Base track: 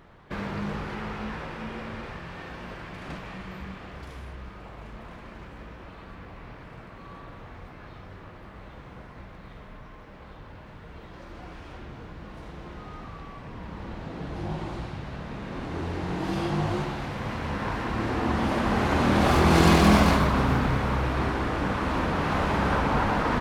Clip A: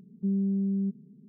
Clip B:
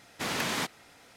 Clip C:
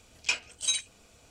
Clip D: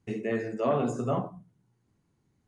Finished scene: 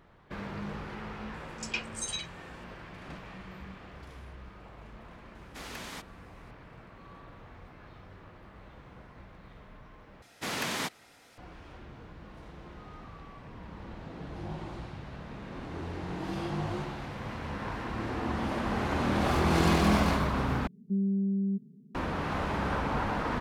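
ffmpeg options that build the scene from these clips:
-filter_complex "[2:a]asplit=2[a][b];[0:a]volume=-6.5dB[c];[3:a]acrossover=split=5200[d][e];[d]adelay=110[f];[f][e]amix=inputs=2:normalize=0[g];[1:a]asplit=2[h][i];[i]adelay=130,highpass=300,lowpass=3.4k,asoftclip=type=hard:threshold=-30dB,volume=-29dB[j];[h][j]amix=inputs=2:normalize=0[k];[c]asplit=3[l][m][n];[l]atrim=end=10.224[o];[b]atrim=end=1.16,asetpts=PTS-STARTPTS,volume=-2dB[p];[m]atrim=start=11.376:end=20.674[q];[k]atrim=end=1.28,asetpts=PTS-STARTPTS,volume=-1.5dB[r];[n]atrim=start=21.946[s];[g]atrim=end=1.3,asetpts=PTS-STARTPTS,volume=-5dB,afade=t=in:d=0.004:c=hsin,afade=t=out:st=1.296:d=0.004:c=hsin,adelay=1340[t];[a]atrim=end=1.16,asetpts=PTS-STARTPTS,volume=-11.5dB,afade=t=in:d=0.004:c=hsin,afade=t=out:st=1.156:d=0.004:c=hsin,adelay=5350[u];[o][p]acrossfade=d=0.004:c1=hsin:c2=hsin[v];[v][q]acrossfade=d=0.004:c1=hsin:c2=hsin[w];[w][r]acrossfade=d=0.004:c1=hsin:c2=hsin[x];[x][s]acrossfade=d=0.004:c1=hsin:c2=hsin[y];[y][t][u]amix=inputs=3:normalize=0"

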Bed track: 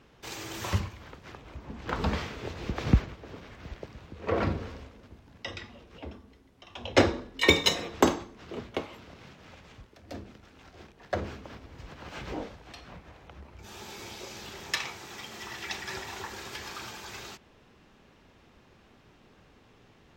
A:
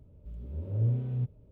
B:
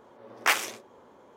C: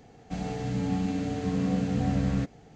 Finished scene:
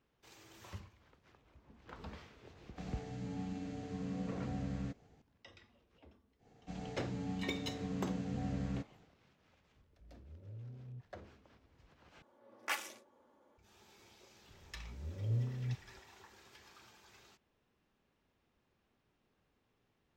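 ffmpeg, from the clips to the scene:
-filter_complex "[3:a]asplit=2[a][b];[1:a]asplit=2[c][d];[0:a]volume=-20dB[e];[c]alimiter=level_in=2dB:limit=-24dB:level=0:latency=1:release=71,volume=-2dB[f];[2:a]aecho=1:1:3.5:0.46[g];[e]asplit=2[h][i];[h]atrim=end=12.224[j];[g]atrim=end=1.36,asetpts=PTS-STARTPTS,volume=-15dB[k];[i]atrim=start=13.576[l];[a]atrim=end=2.75,asetpts=PTS-STARTPTS,volume=-13.5dB,afade=t=in:d=0.004:c=hsin,afade=t=out:st=2.746:d=0.004:c=hsin,adelay=2470[m];[b]atrim=end=2.75,asetpts=PTS-STARTPTS,volume=-12dB,afade=t=in:d=0.1,afade=t=out:st=2.65:d=0.1,adelay=6370[n];[f]atrim=end=1.51,asetpts=PTS-STARTPTS,volume=-17.5dB,afade=t=in:d=0.004:c=hsin,afade=t=out:st=1.506:d=0.004:c=hsin,adelay=9750[o];[d]atrim=end=1.51,asetpts=PTS-STARTPTS,volume=-7.5dB,afade=t=in:d=0.004:c=hsin,afade=t=out:st=1.506:d=0.004:c=hsin,adelay=14490[p];[j][k]acrossfade=d=0.004:c1=hsin:c2=hsin[q];[q][l]acrossfade=d=0.004:c1=hsin:c2=hsin[r];[r][m][n][o][p]amix=inputs=5:normalize=0"

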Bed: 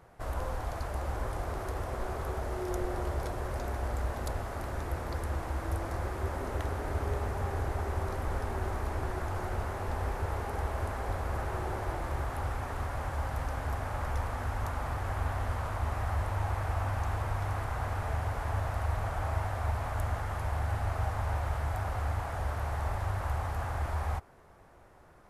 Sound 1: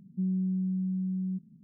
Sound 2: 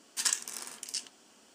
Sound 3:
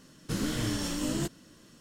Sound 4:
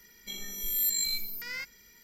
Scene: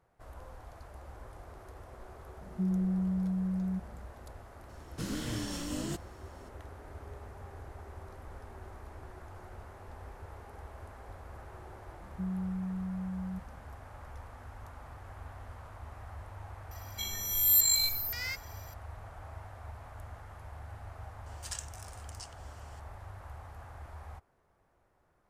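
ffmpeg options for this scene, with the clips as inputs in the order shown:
-filter_complex "[1:a]asplit=2[a][b];[0:a]volume=-14dB[c];[4:a]highshelf=f=2.3k:g=8.5[d];[2:a]acompressor=mode=upward:threshold=-37dB:ratio=2.5:attack=3.2:release=140:knee=2.83:detection=peak[e];[a]atrim=end=1.63,asetpts=PTS-STARTPTS,volume=-1dB,afade=t=in:d=0.004:c=hsin,afade=t=out:st=1.626:d=0.004:c=hsin,adelay=2410[f];[3:a]atrim=end=1.8,asetpts=PTS-STARTPTS,volume=-5.5dB,afade=t=in:d=0.004:c=hsin,afade=t=out:st=1.796:d=0.004:c=hsin,adelay=206829S[g];[b]atrim=end=1.63,asetpts=PTS-STARTPTS,volume=-6dB,afade=t=in:d=0.004:c=hsin,afade=t=out:st=1.626:d=0.004:c=hsin,adelay=12010[h];[d]atrim=end=2.03,asetpts=PTS-STARTPTS,volume=-4dB,afade=t=in:d=0.004:c=hsin,afade=t=out:st=2.026:d=0.004:c=hsin,adelay=16710[i];[e]atrim=end=1.54,asetpts=PTS-STARTPTS,volume=-12dB,afade=t=in:d=0.004:c=hsin,afade=t=out:st=1.536:d=0.004:c=hsin,adelay=21260[j];[c][f][g][h][i][j]amix=inputs=6:normalize=0"

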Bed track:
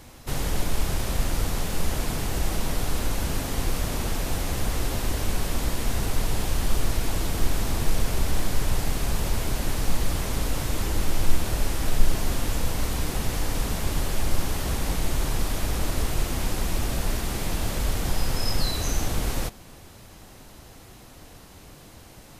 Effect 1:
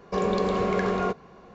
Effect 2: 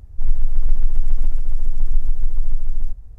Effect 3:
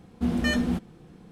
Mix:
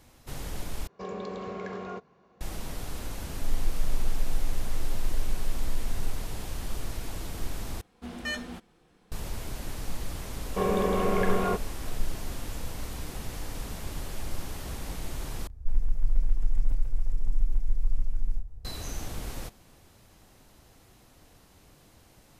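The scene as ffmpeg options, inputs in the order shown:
-filter_complex "[1:a]asplit=2[a][b];[2:a]asplit=2[c][d];[0:a]volume=-10dB[e];[a]highpass=62[f];[3:a]equalizer=f=140:w=0.39:g=-14.5[g];[b]aresample=8000,aresample=44100[h];[d]asplit=2[i][j];[j]adelay=31,volume=-5dB[k];[i][k]amix=inputs=2:normalize=0[l];[e]asplit=4[m][n][o][p];[m]atrim=end=0.874[q];[f]atrim=end=1.54,asetpts=PTS-STARTPTS,volume=-12dB[r];[n]atrim=start=2.406:end=7.814[s];[g]atrim=end=1.31,asetpts=PTS-STARTPTS,volume=-4dB[t];[o]atrim=start=9.116:end=15.474[u];[l]atrim=end=3.18,asetpts=PTS-STARTPTS,volume=-5.5dB[v];[p]atrim=start=18.646[w];[c]atrim=end=3.18,asetpts=PTS-STARTPTS,volume=-11dB,afade=t=in:d=0.004:c=hsin,afade=t=out:st=3.176:d=0.004:c=hsin,adelay=3230[x];[h]atrim=end=1.54,asetpts=PTS-STARTPTS,volume=-1.5dB,afade=t=in:d=0.004:c=hsin,afade=t=out:st=1.536:d=0.004:c=hsin,adelay=10440[y];[q][r]acrossfade=d=0.004:c1=hsin:c2=hsin[z];[z][s]acrossfade=d=0.004:c1=hsin:c2=hsin[aa];[aa][t]acrossfade=d=0.004:c1=hsin:c2=hsin[ab];[ab][u]acrossfade=d=0.004:c1=hsin:c2=hsin[ac];[ac][v]acrossfade=d=0.004:c1=hsin:c2=hsin[ad];[ad][w]acrossfade=d=0.004:c1=hsin:c2=hsin[ae];[ae][x][y]amix=inputs=3:normalize=0"

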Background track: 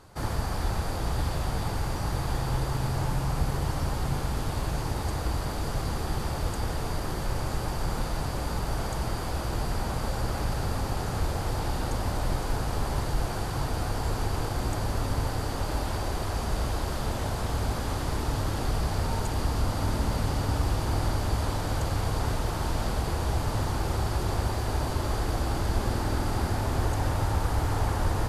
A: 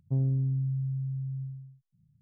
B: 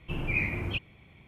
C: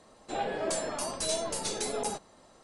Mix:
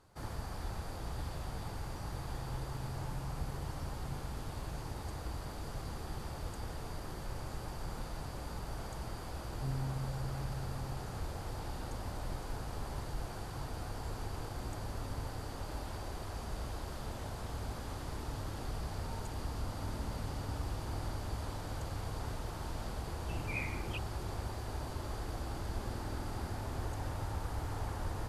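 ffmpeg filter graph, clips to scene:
-filter_complex "[0:a]volume=-12dB[a];[1:a]atrim=end=2.21,asetpts=PTS-STARTPTS,volume=-11dB,afade=t=in:d=0.004:c=hsin,afade=t=out:st=2.206:d=0.004:c=hsin,adelay=9510[b];[2:a]atrim=end=1.27,asetpts=PTS-STARTPTS,volume=-11dB,afade=t=in:d=0.004:c=hsin,afade=t=out:st=1.266:d=0.004:c=hsin,adelay=23200[c];[a][b][c]amix=inputs=3:normalize=0"

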